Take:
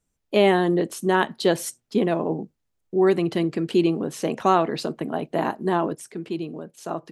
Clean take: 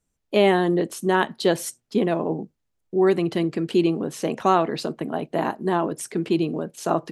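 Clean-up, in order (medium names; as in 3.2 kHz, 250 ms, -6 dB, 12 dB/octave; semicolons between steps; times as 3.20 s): trim 0 dB, from 5.95 s +7.5 dB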